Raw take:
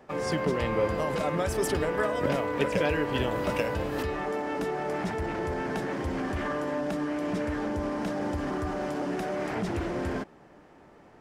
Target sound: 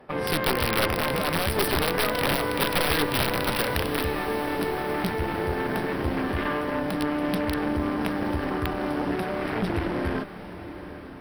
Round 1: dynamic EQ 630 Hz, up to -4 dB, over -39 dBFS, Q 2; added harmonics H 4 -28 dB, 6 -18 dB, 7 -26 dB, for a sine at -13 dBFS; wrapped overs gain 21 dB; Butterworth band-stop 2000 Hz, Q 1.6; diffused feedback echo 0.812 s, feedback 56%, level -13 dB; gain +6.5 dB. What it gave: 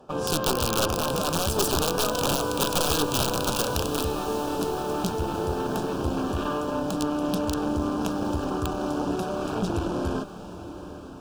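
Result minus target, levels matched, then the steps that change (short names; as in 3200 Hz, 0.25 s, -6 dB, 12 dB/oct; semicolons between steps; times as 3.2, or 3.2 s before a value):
2000 Hz band -7.5 dB
change: Butterworth band-stop 6900 Hz, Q 1.6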